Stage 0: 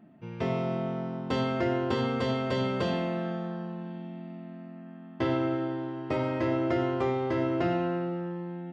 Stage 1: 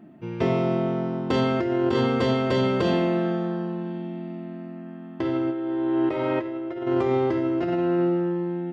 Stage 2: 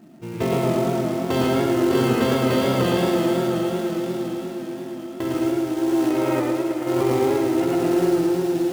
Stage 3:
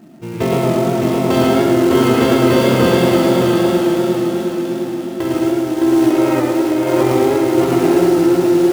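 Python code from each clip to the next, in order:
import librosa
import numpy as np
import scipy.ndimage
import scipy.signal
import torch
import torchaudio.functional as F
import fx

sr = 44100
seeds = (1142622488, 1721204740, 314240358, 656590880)

y1 = fx.spec_box(x, sr, start_s=5.52, length_s=1.33, low_hz=320.0, high_hz=4200.0, gain_db=7)
y1 = fx.peak_eq(y1, sr, hz=340.0, db=7.5, octaves=0.4)
y1 = fx.over_compress(y1, sr, threshold_db=-26.0, ratio=-1.0)
y1 = y1 * 10.0 ** (2.5 / 20.0)
y2 = fx.echo_diffused(y1, sr, ms=661, feedback_pct=45, wet_db=-10.5)
y2 = fx.quant_float(y2, sr, bits=2)
y2 = fx.echo_warbled(y2, sr, ms=109, feedback_pct=66, rate_hz=2.8, cents=100, wet_db=-3.5)
y3 = y2 + 10.0 ** (-3.5 / 20.0) * np.pad(y2, (int(613 * sr / 1000.0), 0))[:len(y2)]
y3 = y3 * 10.0 ** (5.5 / 20.0)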